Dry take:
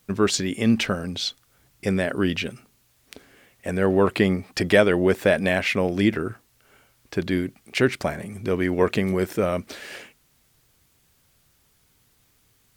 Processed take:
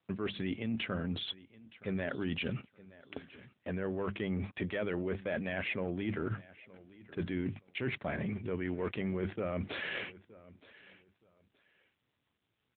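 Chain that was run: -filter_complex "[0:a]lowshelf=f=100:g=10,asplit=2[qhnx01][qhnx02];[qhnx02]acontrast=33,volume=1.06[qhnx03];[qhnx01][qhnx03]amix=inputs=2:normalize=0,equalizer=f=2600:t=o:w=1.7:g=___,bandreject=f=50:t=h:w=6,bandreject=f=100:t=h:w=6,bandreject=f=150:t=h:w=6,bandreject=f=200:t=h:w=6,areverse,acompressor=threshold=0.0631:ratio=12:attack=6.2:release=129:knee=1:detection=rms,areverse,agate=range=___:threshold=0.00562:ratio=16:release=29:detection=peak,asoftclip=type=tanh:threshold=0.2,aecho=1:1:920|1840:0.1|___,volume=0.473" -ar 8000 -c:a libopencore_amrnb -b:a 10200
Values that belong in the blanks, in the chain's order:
3, 0.0708, 0.023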